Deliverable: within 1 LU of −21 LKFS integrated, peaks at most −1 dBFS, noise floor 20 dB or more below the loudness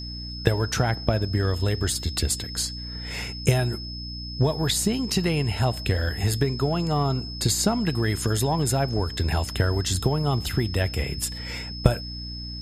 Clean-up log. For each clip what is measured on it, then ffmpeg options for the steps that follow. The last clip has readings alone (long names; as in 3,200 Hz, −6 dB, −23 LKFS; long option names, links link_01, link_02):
mains hum 60 Hz; hum harmonics up to 300 Hz; level of the hum −35 dBFS; interfering tone 5,200 Hz; level of the tone −36 dBFS; integrated loudness −25.0 LKFS; sample peak −1.5 dBFS; target loudness −21.0 LKFS
→ -af "bandreject=frequency=60:width_type=h:width=6,bandreject=frequency=120:width_type=h:width=6,bandreject=frequency=180:width_type=h:width=6,bandreject=frequency=240:width_type=h:width=6,bandreject=frequency=300:width_type=h:width=6"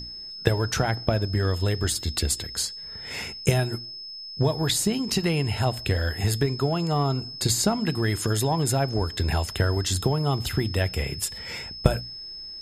mains hum none found; interfering tone 5,200 Hz; level of the tone −36 dBFS
→ -af "bandreject=frequency=5200:width=30"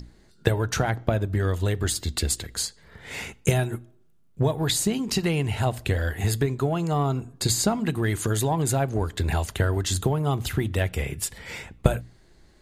interfering tone none found; integrated loudness −25.5 LKFS; sample peak −2.5 dBFS; target loudness −21.0 LKFS
→ -af "volume=4.5dB,alimiter=limit=-1dB:level=0:latency=1"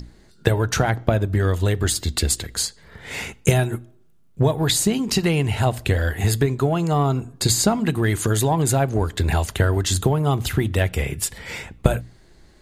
integrated loudness −21.5 LKFS; sample peak −1.0 dBFS; background noise floor −52 dBFS